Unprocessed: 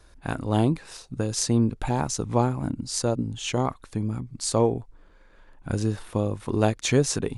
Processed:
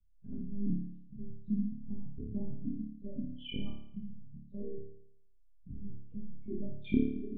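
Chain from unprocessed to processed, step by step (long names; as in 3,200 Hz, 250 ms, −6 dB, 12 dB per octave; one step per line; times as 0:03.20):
expanding power law on the bin magnitudes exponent 3.4
formant resonators in series i
one-pitch LPC vocoder at 8 kHz 200 Hz
flutter between parallel walls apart 4.8 metres, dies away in 0.69 s
level −4.5 dB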